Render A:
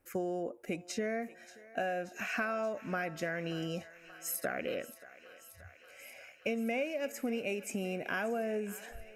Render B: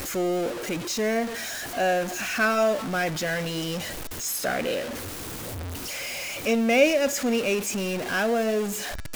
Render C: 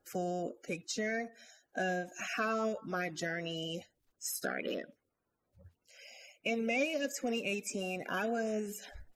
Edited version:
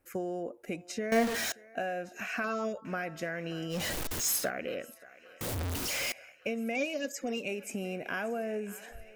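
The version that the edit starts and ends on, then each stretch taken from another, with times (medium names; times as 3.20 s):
A
1.12–1.52 s: from B
2.44–2.85 s: from C
3.77–4.43 s: from B, crossfade 0.16 s
5.41–6.12 s: from B
6.75–7.48 s: from C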